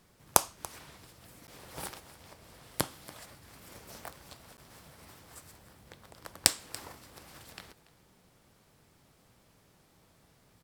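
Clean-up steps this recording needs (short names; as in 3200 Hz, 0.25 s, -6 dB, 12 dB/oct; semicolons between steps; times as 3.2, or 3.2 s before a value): interpolate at 1.47/4.57, 9.8 ms; inverse comb 0.285 s -19.5 dB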